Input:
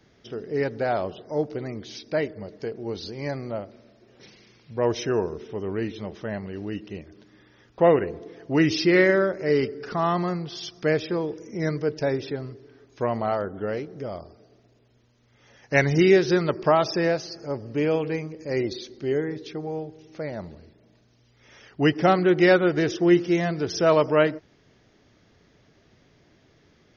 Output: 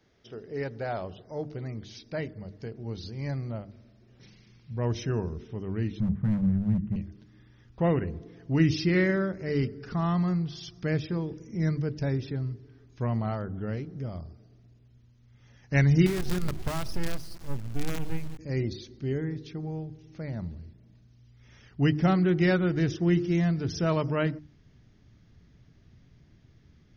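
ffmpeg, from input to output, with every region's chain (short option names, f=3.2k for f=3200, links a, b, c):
-filter_complex "[0:a]asettb=1/sr,asplit=3[a][b][c];[a]atrim=end=6.004[d];[b]atrim=start=6:end=6.96,asetpts=PTS-STARTPTS,afade=t=in:d=0.004:c=qsin,afade=t=out:st=0.956:d=0.004:c=qsin,lowpass=f=1.8k:w=0.5412,lowpass=f=1.8k:w=1.3066,lowshelf=f=250:t=q:w=3:g=8,asoftclip=type=hard:threshold=-23.5dB[e];[c]atrim=start=6.956[f];[d][e]acrossfade=d=0.004:c1=hsin:c2=qsin[g];[g][f]acrossfade=d=0.004:c1=qsin:c2=hsin,asettb=1/sr,asplit=3[h][i][j];[h]atrim=end=16.064[k];[i]atrim=start=16.06:end=18.39,asetpts=PTS-STARTPTS,afade=t=in:d=0.004:c=qsin,afade=t=out:st=2.326:d=0.004:c=qsin,acrusher=bits=4:dc=4:mix=0:aa=0.000001,acompressor=threshold=-22dB:ratio=4:attack=3.2:release=140:knee=1:detection=peak[l];[j]atrim=start=18.386[m];[k][l]acrossfade=d=0.004:c1=hsin:c2=qsin[n];[n][m]acrossfade=d=0.004:c1=qsin:c2=hsin,bandreject=f=50:t=h:w=6,bandreject=f=100:t=h:w=6,bandreject=f=150:t=h:w=6,bandreject=f=200:t=h:w=6,bandreject=f=250:t=h:w=6,bandreject=f=300:t=h:w=6,bandreject=f=350:t=h:w=6,asubboost=boost=7:cutoff=180,volume=-7dB"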